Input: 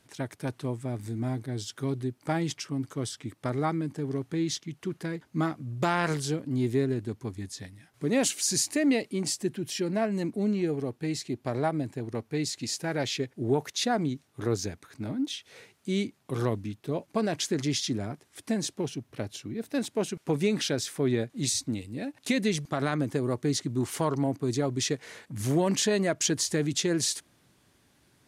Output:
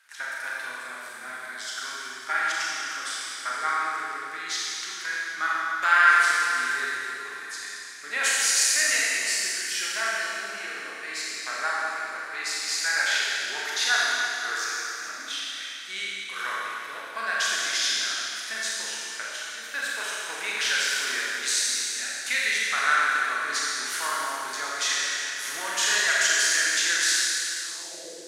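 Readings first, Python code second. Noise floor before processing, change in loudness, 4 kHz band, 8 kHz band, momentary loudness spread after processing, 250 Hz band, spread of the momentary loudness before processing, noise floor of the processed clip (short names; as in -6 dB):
-67 dBFS, +5.0 dB, +8.5 dB, +7.5 dB, 13 LU, -22.0 dB, 10 LU, -39 dBFS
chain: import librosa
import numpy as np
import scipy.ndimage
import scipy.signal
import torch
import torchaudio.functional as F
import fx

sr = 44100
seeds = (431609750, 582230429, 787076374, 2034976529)

y = fx.rev_schroeder(x, sr, rt60_s=3.0, comb_ms=28, drr_db=-6.0)
y = fx.filter_sweep_highpass(y, sr, from_hz=1500.0, to_hz=500.0, start_s=27.61, end_s=28.12, q=4.1)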